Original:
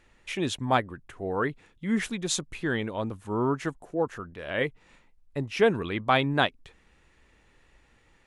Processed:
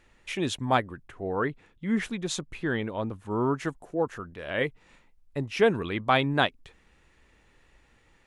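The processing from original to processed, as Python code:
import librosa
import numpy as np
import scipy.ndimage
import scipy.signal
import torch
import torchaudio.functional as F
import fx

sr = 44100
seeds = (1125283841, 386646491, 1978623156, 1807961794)

y = fx.high_shelf(x, sr, hz=4600.0, db=-8.0, at=(1.07, 3.31))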